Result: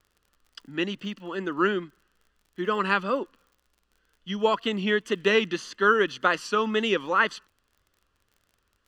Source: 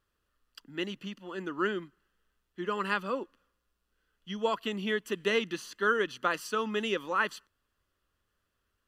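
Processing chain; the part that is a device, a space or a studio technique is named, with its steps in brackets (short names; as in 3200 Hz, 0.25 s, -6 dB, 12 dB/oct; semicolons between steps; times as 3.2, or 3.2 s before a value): lo-fi chain (LPF 6400 Hz 12 dB/oct; wow and flutter; crackle 43/s -54 dBFS); gain +6.5 dB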